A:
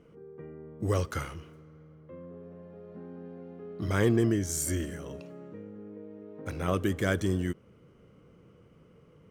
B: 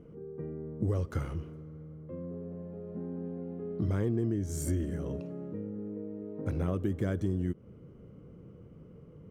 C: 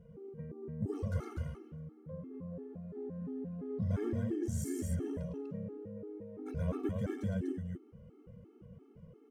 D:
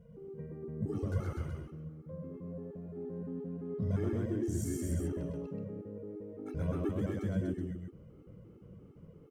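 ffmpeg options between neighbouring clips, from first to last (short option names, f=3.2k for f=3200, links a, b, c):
-af "tiltshelf=f=760:g=8,acompressor=threshold=-28dB:ratio=4"
-af "aecho=1:1:107.9|244.9:0.562|0.631,afftfilt=real='re*gt(sin(2*PI*2.9*pts/sr)*(1-2*mod(floor(b*sr/1024/230),2)),0)':imag='im*gt(sin(2*PI*2.9*pts/sr)*(1-2*mod(floor(b*sr/1024/230),2)),0)':win_size=1024:overlap=0.75,volume=-3dB"
-af "aecho=1:1:128:0.668"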